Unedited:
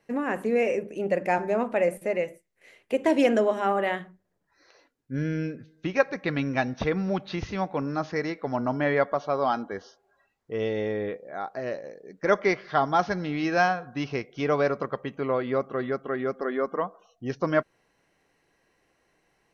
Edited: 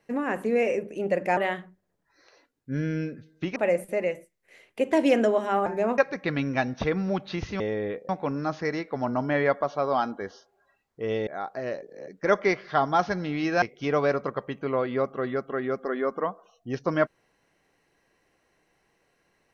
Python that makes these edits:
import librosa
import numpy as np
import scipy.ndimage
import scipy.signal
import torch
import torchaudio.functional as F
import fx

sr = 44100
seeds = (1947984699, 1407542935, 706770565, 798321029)

y = fx.edit(x, sr, fx.swap(start_s=1.37, length_s=0.32, other_s=3.79, other_length_s=2.19),
    fx.move(start_s=10.78, length_s=0.49, to_s=7.6),
    fx.reverse_span(start_s=11.82, length_s=0.26),
    fx.cut(start_s=13.62, length_s=0.56), tone=tone)